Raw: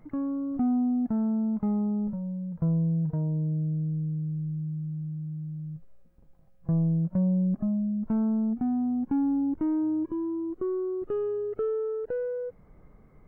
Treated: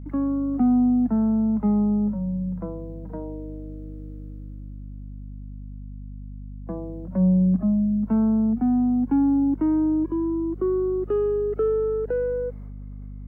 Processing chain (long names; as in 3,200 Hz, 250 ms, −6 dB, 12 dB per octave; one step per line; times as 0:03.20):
Chebyshev high-pass filter 180 Hz, order 10
downward expander −53 dBFS
mains hum 50 Hz, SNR 13 dB
level +6.5 dB